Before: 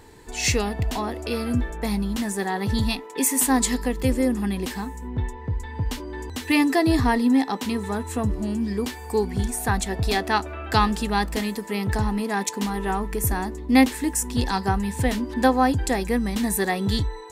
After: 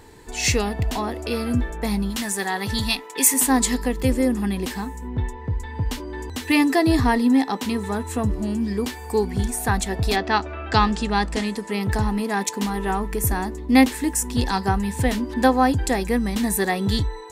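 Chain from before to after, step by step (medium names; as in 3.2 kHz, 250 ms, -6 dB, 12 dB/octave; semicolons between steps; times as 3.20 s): 2.10–3.34 s: tilt shelf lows -5 dB, about 920 Hz; 10.15–11.79 s: low-pass 5.4 kHz -> 11 kHz 24 dB/octave; trim +1.5 dB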